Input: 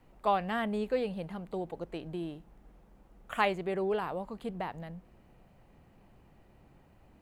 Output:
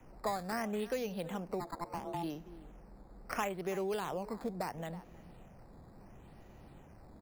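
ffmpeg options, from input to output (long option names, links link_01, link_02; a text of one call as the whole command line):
ffmpeg -i in.wav -filter_complex "[0:a]asplit=2[link_01][link_02];[link_02]adelay=320.7,volume=-21dB,highshelf=frequency=4000:gain=-7.22[link_03];[link_01][link_03]amix=inputs=2:normalize=0,asplit=3[link_04][link_05][link_06];[link_04]afade=type=out:start_time=1.59:duration=0.02[link_07];[link_05]aeval=exprs='val(0)*sin(2*PI*510*n/s)':channel_layout=same,afade=type=in:start_time=1.59:duration=0.02,afade=type=out:start_time=2.22:duration=0.02[link_08];[link_06]afade=type=in:start_time=2.22:duration=0.02[link_09];[link_07][link_08][link_09]amix=inputs=3:normalize=0,acrossover=split=1300[link_10][link_11];[link_11]acrusher=samples=10:mix=1:aa=0.000001:lfo=1:lforange=10:lforate=0.73[link_12];[link_10][link_12]amix=inputs=2:normalize=0,acrossover=split=210|2000[link_13][link_14][link_15];[link_13]acompressor=threshold=-55dB:ratio=4[link_16];[link_14]acompressor=threshold=-41dB:ratio=4[link_17];[link_15]acompressor=threshold=-50dB:ratio=4[link_18];[link_16][link_17][link_18]amix=inputs=3:normalize=0,volume=5dB" out.wav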